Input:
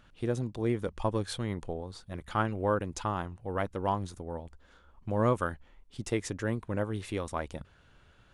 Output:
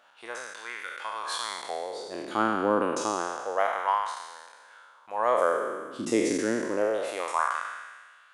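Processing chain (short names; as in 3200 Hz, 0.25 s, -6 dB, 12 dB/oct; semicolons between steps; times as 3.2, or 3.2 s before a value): spectral trails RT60 1.63 s; LFO high-pass sine 0.28 Hz 260–1600 Hz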